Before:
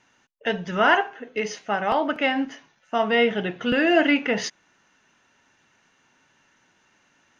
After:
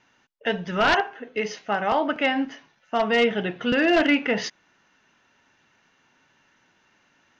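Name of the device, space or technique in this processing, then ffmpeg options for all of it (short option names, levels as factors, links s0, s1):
synthesiser wavefolder: -af "aeval=exprs='0.251*(abs(mod(val(0)/0.251+3,4)-2)-1)':c=same,lowpass=f=5900:w=0.5412,lowpass=f=5900:w=1.3066"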